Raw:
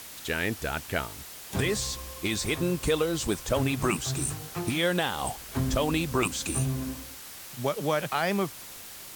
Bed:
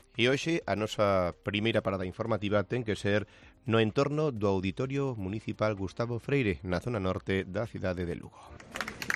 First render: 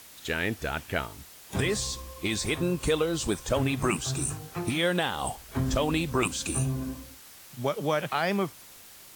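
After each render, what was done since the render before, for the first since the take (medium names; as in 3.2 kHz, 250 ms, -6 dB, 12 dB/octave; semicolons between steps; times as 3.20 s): noise print and reduce 6 dB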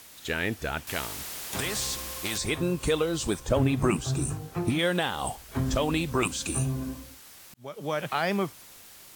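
0.87–2.38 s: spectrum-flattening compressor 2:1; 3.40–4.79 s: tilt shelf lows +4 dB; 7.54–8.10 s: fade in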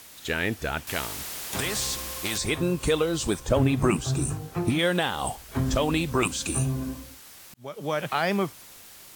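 trim +2 dB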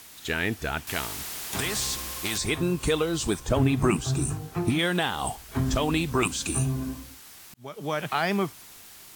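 peaking EQ 540 Hz -8 dB 0.2 oct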